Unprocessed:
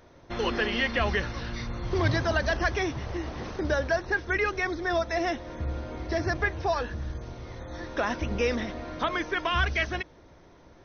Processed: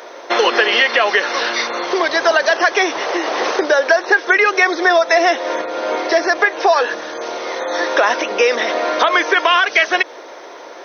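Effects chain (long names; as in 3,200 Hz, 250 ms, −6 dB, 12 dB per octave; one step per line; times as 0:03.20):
downward compressor 10 to 1, threshold −31 dBFS, peak gain reduction 12 dB
high-pass filter 420 Hz 24 dB per octave
boost into a limiter +24 dB
level −1 dB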